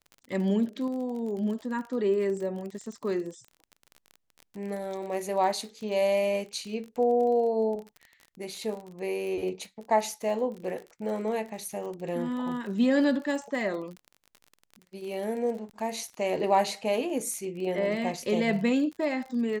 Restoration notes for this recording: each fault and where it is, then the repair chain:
surface crackle 33 per second −36 dBFS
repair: click removal

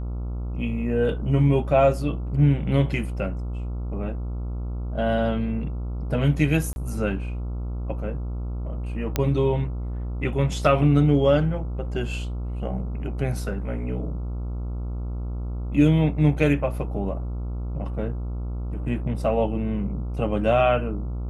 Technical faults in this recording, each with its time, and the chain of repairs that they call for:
mains buzz 60 Hz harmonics 23 −29 dBFS
0:06.73–0:06.76: drop-out 31 ms
0:09.16: click −8 dBFS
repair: click removal
hum removal 60 Hz, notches 23
repair the gap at 0:06.73, 31 ms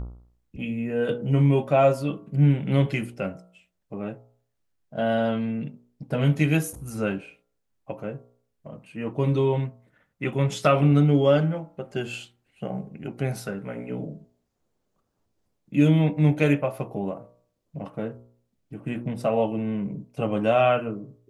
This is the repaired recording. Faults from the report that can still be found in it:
none of them is left

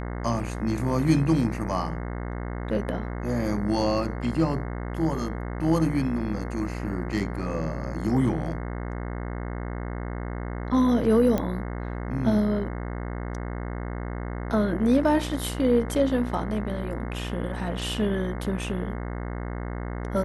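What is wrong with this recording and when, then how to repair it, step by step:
mains buzz 60 Hz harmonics 36 −32 dBFS
0:11.38: click −13 dBFS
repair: click removal
hum removal 60 Hz, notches 36

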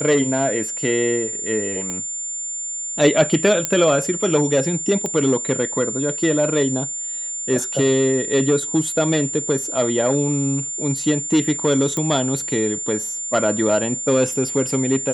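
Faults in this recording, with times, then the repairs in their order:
whistle 7,200 Hz −25 dBFS
0:01.90: click −15 dBFS
0:03.65: click −3 dBFS
0:05.06: click −12 dBFS
0:11.97: click −11 dBFS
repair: click removal
notch filter 7,200 Hz, Q 30

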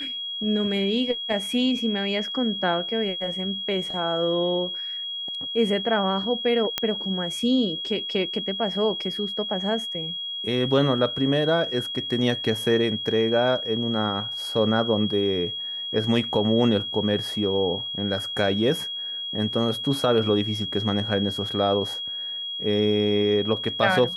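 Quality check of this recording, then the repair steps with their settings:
whistle 3,300 Hz −29 dBFS
0:06.78: click −7 dBFS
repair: click removal
notch filter 3,300 Hz, Q 30

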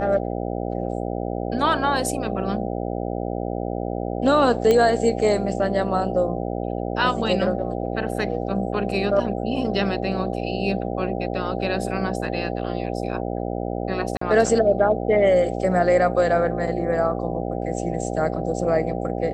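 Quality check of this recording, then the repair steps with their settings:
mains buzz 60 Hz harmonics 13 −27 dBFS
0:04.71: click −8 dBFS
0:14.17–0:14.21: drop-out 44 ms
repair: click removal
hum removal 60 Hz, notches 13
repair the gap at 0:14.17, 44 ms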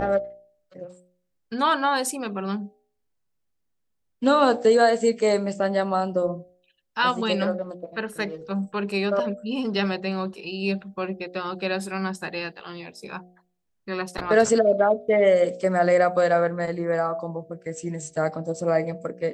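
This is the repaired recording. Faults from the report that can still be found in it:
none of them is left

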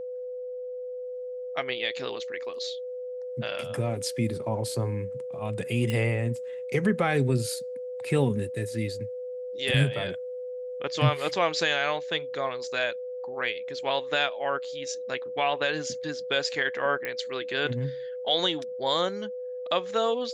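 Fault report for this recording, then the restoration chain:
whistle 500 Hz −33 dBFS
0:05.90: click −16 dBFS
0:17.05: click −17 dBFS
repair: click removal
notch filter 500 Hz, Q 30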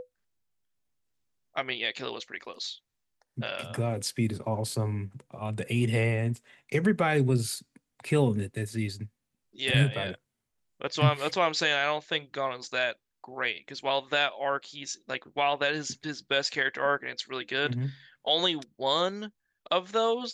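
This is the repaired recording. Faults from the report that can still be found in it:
none of them is left

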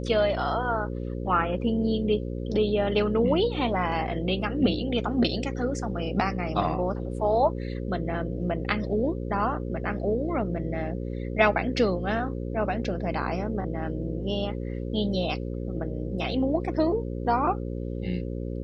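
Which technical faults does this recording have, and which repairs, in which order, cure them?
mains buzz 60 Hz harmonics 9 −32 dBFS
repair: hum removal 60 Hz, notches 9

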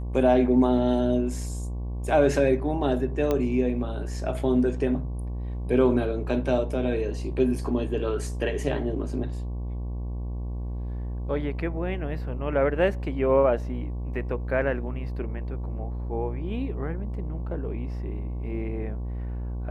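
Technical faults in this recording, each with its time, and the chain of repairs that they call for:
mains buzz 60 Hz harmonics 19 −31 dBFS
0:03.31: click −13 dBFS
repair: click removal
hum removal 60 Hz, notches 19

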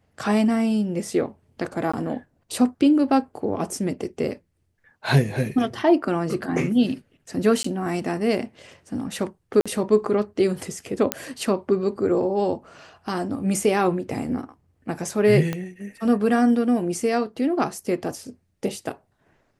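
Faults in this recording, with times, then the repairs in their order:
0:01.92–0:01.94: drop-out 15 ms
0:07.63–0:07.64: drop-out 14 ms
0:09.61–0:09.66: drop-out 46 ms
0:11.12: click −3 dBFS
0:15.53: click −13 dBFS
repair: click removal
repair the gap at 0:01.92, 15 ms
repair the gap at 0:07.63, 14 ms
repair the gap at 0:09.61, 46 ms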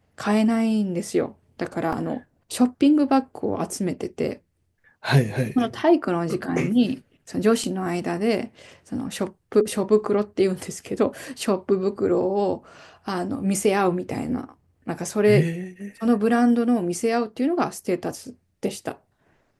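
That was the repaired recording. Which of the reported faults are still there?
0:15.53: click

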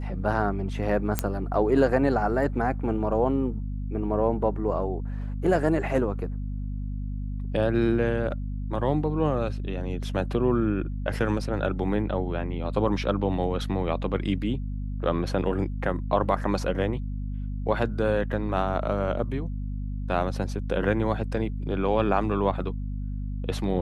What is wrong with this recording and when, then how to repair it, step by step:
mains hum 50 Hz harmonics 5 −31 dBFS
0:01.19: click −7 dBFS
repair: click removal
hum removal 50 Hz, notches 5

